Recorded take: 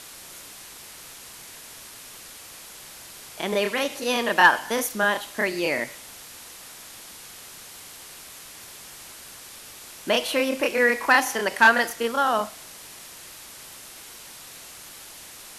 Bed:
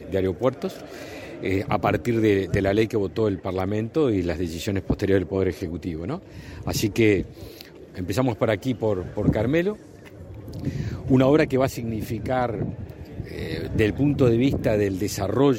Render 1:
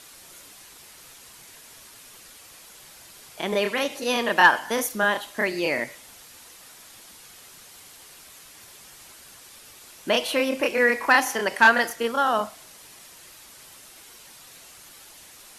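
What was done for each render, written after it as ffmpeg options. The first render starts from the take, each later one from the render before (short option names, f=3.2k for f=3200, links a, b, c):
-af "afftdn=nr=6:nf=-44"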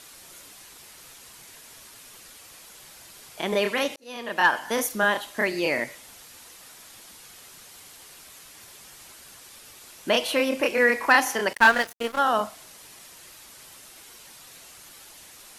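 -filter_complex "[0:a]asettb=1/sr,asplit=3[a][b][c];[a]atrim=end=11.534[d];[b]atrim=start=11.53:end=12.19,asetpts=PTS-STARTPTS,afade=t=in:d=0.004:c=qsin,afade=t=out:st=0.656:d=0.004:c=qsin,aeval=exprs='sgn(val(0))*max(abs(val(0))-0.0266,0)':c=same[e];[c]atrim=start=12.186[f];[d][e]acrossfade=d=0.004:c1=hsin:c2=qsin[g];[g][f]acrossfade=d=0.004:c1=qsin:c2=hsin,asplit=2[h][i];[h]atrim=end=3.96,asetpts=PTS-STARTPTS,afade=t=out:st=3.956:d=0.004:c=hsin[j];[i]atrim=start=3.96,asetpts=PTS-STARTPTS,afade=t=in:d=0.83[k];[j][k]concat=n=2:v=0:a=1"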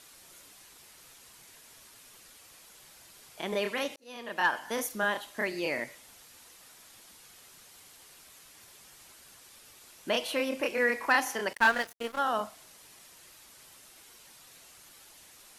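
-af "volume=-7dB"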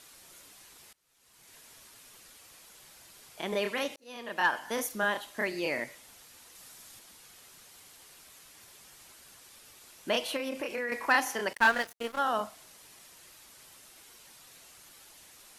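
-filter_complex "[0:a]asettb=1/sr,asplit=3[a][b][c];[a]atrim=end=6.554[d];[b]atrim=start=6.55:end=6.99,asetpts=PTS-STARTPTS,afade=t=in:d=0.004:c=qsin,afade=t=out:st=0.436:d=0.004:c=qsin,bass=f=250:g=4,treble=f=4k:g=4[e];[c]atrim=start=6.986[f];[d][e]acrossfade=d=0.004:c1=hsin:c2=qsin[g];[g][f]acrossfade=d=0.004:c1=qsin:c2=hsin,asettb=1/sr,asplit=3[h][i][j];[h]atrim=end=10.364[k];[i]atrim=start=10.36:end=10.92,asetpts=PTS-STARTPTS,afade=t=in:d=0.004:c=qsin,afade=t=out:st=0.556:d=0.004:c=qsin,acompressor=threshold=-30dB:ratio=6:attack=3.2:release=140:knee=1:detection=peak[l];[j]atrim=start=10.916[m];[k][l]acrossfade=d=0.004:c1=hsin:c2=qsin[n];[n][m]acrossfade=d=0.004:c1=qsin:c2=hsin,asplit=2[o][p];[o]atrim=end=0.93,asetpts=PTS-STARTPTS,afade=t=out:st=0.926:d=0.004:c=hsin:silence=0.0668344[q];[p]atrim=start=0.93,asetpts=PTS-STARTPTS,afade=t=in:d=0.63:c=qua:silence=0.0668344[r];[q][r]concat=n=2:v=0:a=1"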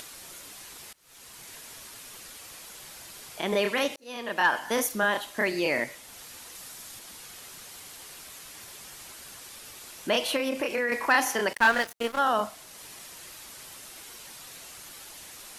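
-filter_complex "[0:a]asplit=2[a][b];[b]alimiter=limit=-23dB:level=0:latency=1:release=17,volume=0.5dB[c];[a][c]amix=inputs=2:normalize=0,acompressor=mode=upward:threshold=-39dB:ratio=2.5"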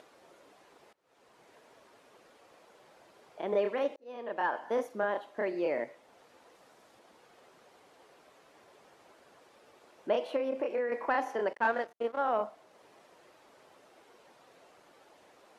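-af "bandpass=f=530:t=q:w=1.2:csg=0,aeval=exprs='0.15*(cos(1*acos(clip(val(0)/0.15,-1,1)))-cos(1*PI/2))+0.00841*(cos(3*acos(clip(val(0)/0.15,-1,1)))-cos(3*PI/2))':c=same"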